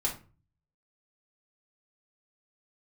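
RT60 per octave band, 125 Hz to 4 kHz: 0.75, 0.50, 0.40, 0.35, 0.30, 0.25 s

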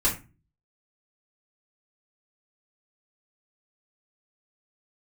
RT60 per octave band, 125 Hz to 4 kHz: 0.60, 0.50, 0.30, 0.30, 0.30, 0.20 s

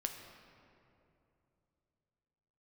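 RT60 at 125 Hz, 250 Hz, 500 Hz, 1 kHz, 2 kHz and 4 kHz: 3.8, 3.4, 3.1, 2.6, 2.1, 1.5 s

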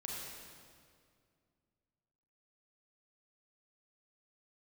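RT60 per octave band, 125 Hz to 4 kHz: 2.9, 2.7, 2.3, 2.0, 1.8, 1.7 s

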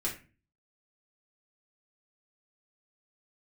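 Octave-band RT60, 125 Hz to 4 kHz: 0.60, 0.50, 0.35, 0.30, 0.35, 0.25 s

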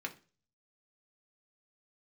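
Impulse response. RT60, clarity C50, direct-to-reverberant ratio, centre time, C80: 0.35 s, 16.0 dB, 1.5 dB, 7 ms, 22.0 dB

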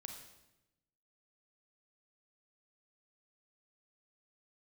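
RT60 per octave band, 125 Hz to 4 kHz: 1.3, 1.2, 1.0, 0.90, 0.85, 0.80 s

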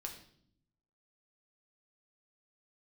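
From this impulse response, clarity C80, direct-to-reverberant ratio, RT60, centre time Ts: 11.5 dB, 1.5 dB, 0.65 s, 19 ms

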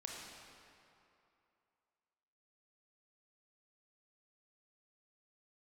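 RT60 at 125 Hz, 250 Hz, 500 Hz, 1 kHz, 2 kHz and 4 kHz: 2.3, 2.6, 2.7, 2.8, 2.4, 1.9 s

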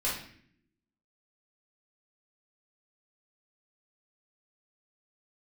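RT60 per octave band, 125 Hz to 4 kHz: 1.0, 1.1, 0.65, 0.50, 0.65, 0.55 s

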